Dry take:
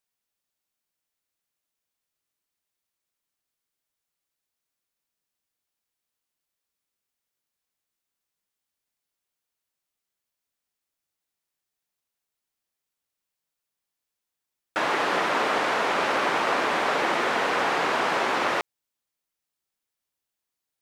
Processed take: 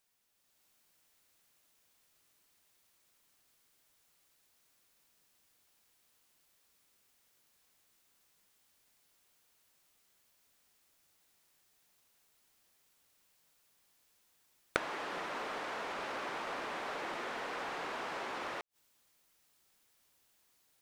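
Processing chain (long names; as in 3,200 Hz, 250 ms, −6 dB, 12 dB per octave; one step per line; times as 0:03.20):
automatic gain control gain up to 7 dB
gain into a clipping stage and back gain 13 dB
gate with flip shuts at −20 dBFS, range −28 dB
level +6 dB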